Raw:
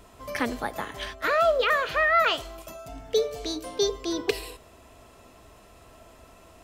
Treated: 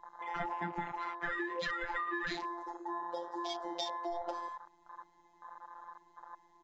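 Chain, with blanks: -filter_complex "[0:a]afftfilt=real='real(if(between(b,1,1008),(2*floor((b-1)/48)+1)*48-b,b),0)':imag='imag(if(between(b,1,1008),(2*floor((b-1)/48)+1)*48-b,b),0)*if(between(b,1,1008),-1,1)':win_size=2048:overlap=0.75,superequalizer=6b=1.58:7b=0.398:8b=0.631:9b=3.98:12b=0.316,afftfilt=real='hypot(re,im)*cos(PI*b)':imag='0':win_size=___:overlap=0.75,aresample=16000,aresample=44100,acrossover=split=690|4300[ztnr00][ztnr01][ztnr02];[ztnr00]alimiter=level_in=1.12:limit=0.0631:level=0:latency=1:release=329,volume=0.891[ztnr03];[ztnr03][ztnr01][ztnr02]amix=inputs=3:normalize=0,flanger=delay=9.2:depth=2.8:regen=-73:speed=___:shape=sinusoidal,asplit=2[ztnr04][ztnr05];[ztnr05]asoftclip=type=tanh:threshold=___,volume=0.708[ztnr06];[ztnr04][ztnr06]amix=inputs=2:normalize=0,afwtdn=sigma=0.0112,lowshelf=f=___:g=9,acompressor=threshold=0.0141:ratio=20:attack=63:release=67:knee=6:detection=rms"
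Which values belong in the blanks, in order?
1024, 1.1, 0.0299, 81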